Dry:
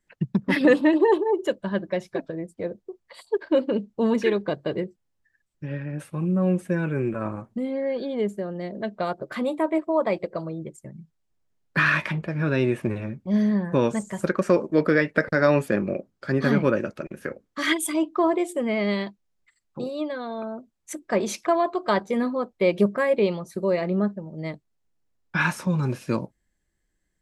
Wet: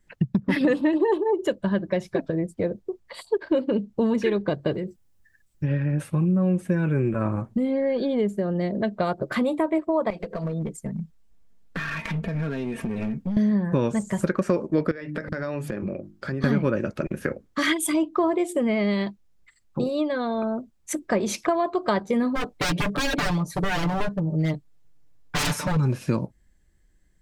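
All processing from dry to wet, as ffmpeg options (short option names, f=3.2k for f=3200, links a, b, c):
-filter_complex "[0:a]asettb=1/sr,asplit=3[a][b][c];[a]atrim=end=4.744[d];[b]atrim=start=4.74:end=5.64,asetpts=PTS-STARTPTS,afade=t=in:d=0.004:c=qsin,afade=t=out:st=0.896:d=0.004:c=qsin,highshelf=f=6.5k:g=9,acompressor=threshold=-32dB:ratio=6:attack=3.2:release=140:knee=1:detection=peak[e];[c]atrim=start=5.636[f];[d][e]acrossfade=d=0.004:c1=hsin:c2=qsin[g];[g][f]acrossfade=d=0.004:c1=qsin:c2=hsin,asettb=1/sr,asplit=3[h][i][j];[h]atrim=end=10.104[k];[i]atrim=start=10.1:end=13.37,asetpts=PTS-STARTPTS,afade=t=in:d=0.004:c=qsin,afade=t=out:st=3.266:d=0.004:c=qsin,aecho=1:1:4.4:0.77,atrim=end_sample=144207,acompressor=threshold=-32dB:ratio=12:attack=3.2:release=140:knee=1:detection=peak,aeval=exprs='clip(val(0),-1,0.0178)':c=same[l];[j]atrim=start=13.366[m];[k][l]acrossfade=d=0.004:c1=hsin:c2=qsin[n];[n][m]acrossfade=d=0.004:c1=qsin:c2=hsin,asettb=1/sr,asplit=3[o][p][q];[o]atrim=end=14.914[r];[p]atrim=start=14.91:end=16.44,asetpts=PTS-STARTPTS,afade=t=in:d=0.004:c=qsin,afade=t=out:st=1.526:d=0.004:c=qsin,bandreject=f=50:t=h:w=6,bandreject=f=100:t=h:w=6,bandreject=f=150:t=h:w=6,bandreject=f=200:t=h:w=6,bandreject=f=250:t=h:w=6,bandreject=f=300:t=h:w=6,bandreject=f=350:t=h:w=6,acompressor=threshold=-35dB:ratio=5:attack=3.2:release=140:knee=1:detection=peak[s];[q]atrim=start=16.436[t];[r][s]acrossfade=d=0.004:c1=hsin:c2=qsin[u];[u][t]acrossfade=d=0.004:c1=qsin:c2=hsin,asettb=1/sr,asplit=3[v][w][x];[v]atrim=end=22.354[y];[w]atrim=start=22.35:end=25.77,asetpts=PTS-STARTPTS,afade=t=in:d=0.004:c=qsin,afade=t=out:st=3.416:d=0.004:c=qsin,aeval=exprs='0.0501*(abs(mod(val(0)/0.0501+3,4)-2)-1)':c=same,aecho=1:1:6.8:0.93,atrim=end_sample=150822[z];[x]atrim=start=25.766[aa];[y][z]acrossfade=d=0.004:c1=hsin:c2=qsin[ab];[ab][aa]acrossfade=d=0.004:c1=qsin:c2=hsin,lowshelf=f=170:g=9.5,acompressor=threshold=-27dB:ratio=3,volume=5.5dB"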